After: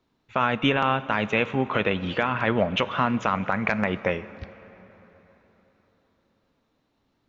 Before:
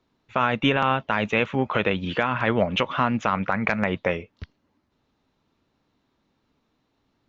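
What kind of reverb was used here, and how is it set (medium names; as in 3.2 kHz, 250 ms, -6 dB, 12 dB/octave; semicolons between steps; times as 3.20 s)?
plate-style reverb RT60 4 s, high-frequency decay 0.7×, DRR 15 dB; trim -1 dB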